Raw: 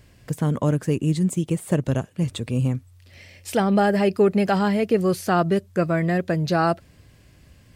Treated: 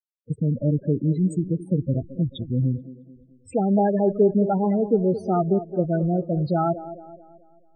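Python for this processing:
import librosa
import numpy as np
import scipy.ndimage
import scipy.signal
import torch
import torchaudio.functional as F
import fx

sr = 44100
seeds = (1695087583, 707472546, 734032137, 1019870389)

y = fx.backlash(x, sr, play_db=-31.0)
y = fx.spec_topn(y, sr, count=8)
y = fx.echo_wet_bandpass(y, sr, ms=217, feedback_pct=44, hz=420.0, wet_db=-11.5)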